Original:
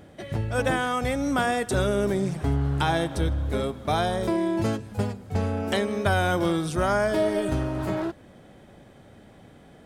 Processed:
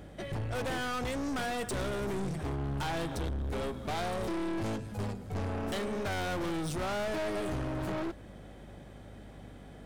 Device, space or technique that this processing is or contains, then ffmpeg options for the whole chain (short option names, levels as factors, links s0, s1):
valve amplifier with mains hum: -af "aeval=exprs='(tanh(39.8*val(0)+0.3)-tanh(0.3))/39.8':c=same,aeval=exprs='val(0)+0.00282*(sin(2*PI*50*n/s)+sin(2*PI*2*50*n/s)/2+sin(2*PI*3*50*n/s)/3+sin(2*PI*4*50*n/s)/4+sin(2*PI*5*50*n/s)/5)':c=same"